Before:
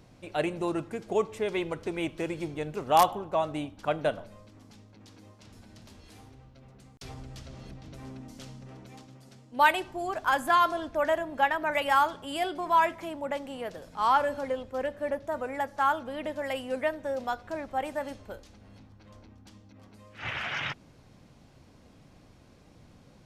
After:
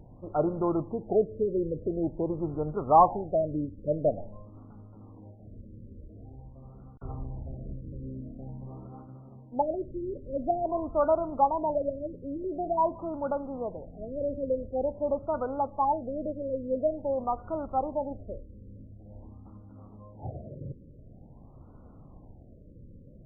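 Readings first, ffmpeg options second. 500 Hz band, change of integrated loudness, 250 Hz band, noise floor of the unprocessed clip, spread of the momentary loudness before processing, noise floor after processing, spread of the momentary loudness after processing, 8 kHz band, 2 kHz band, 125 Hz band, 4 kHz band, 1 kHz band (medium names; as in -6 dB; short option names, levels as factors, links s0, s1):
+2.5 dB, -1.0 dB, +3.0 dB, -56 dBFS, 21 LU, -51 dBFS, 22 LU, under -30 dB, under -25 dB, +5.0 dB, under -40 dB, -2.0 dB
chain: -af "lowshelf=f=78:g=10,afftfilt=real='re*lt(b*sr/1024,570*pow(1500/570,0.5+0.5*sin(2*PI*0.47*pts/sr)))':imag='im*lt(b*sr/1024,570*pow(1500/570,0.5+0.5*sin(2*PI*0.47*pts/sr)))':win_size=1024:overlap=0.75,volume=1.33"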